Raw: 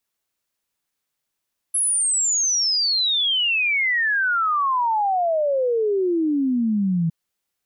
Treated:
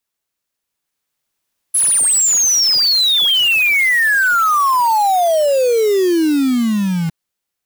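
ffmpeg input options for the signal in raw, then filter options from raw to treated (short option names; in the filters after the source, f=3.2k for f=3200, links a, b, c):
-f lavfi -i "aevalsrc='0.133*clip(min(t,5.36-t)/0.01,0,1)*sin(2*PI*11000*5.36/log(160/11000)*(exp(log(160/11000)*t/5.36)-1))':d=5.36:s=44100"
-af "acrusher=bits=2:mode=log:mix=0:aa=0.000001,dynaudnorm=f=210:g=11:m=6.5dB"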